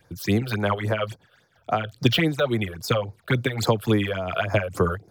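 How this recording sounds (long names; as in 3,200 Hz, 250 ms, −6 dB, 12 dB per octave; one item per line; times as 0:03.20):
phaser sweep stages 8, 3.6 Hz, lowest notch 250–3,100 Hz
amplitude modulation by smooth noise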